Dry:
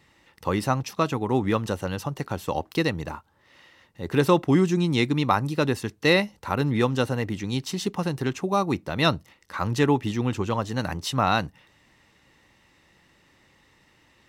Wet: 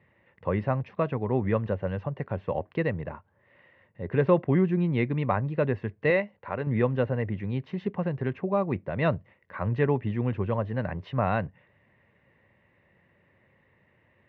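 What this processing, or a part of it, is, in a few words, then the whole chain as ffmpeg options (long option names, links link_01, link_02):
bass cabinet: -filter_complex "[0:a]asettb=1/sr,asplit=3[link_01][link_02][link_03];[link_01]atrim=end=6.104[link_04];[link_02]atrim=start=6.1:end=6.67,asetpts=PTS-STARTPTS,afade=type=in:duration=0.004:curve=qsin,afade=type=out:start_time=0.566:duration=0.004:curve=qsin,lowshelf=frequency=260:gain=-10.5[link_05];[link_03]atrim=start=6.666[link_06];[link_04][link_05]acrossfade=duration=0.004:curve1=hsin:curve2=qsin[link_07];[link_07][link_06]acrossfade=duration=0.004:curve1=qsin:curve2=hsin,highpass=84,equalizer=frequency=100:width_type=q:width=4:gain=5,equalizer=frequency=300:width_type=q:width=4:gain=-9,equalizer=frequency=580:width_type=q:width=4:gain=4,equalizer=frequency=840:width_type=q:width=4:gain=-7,equalizer=frequency=1300:width_type=q:width=4:gain=-9,lowpass=frequency=2100:width=0.5412,lowpass=frequency=2100:width=1.3066,volume=-1dB"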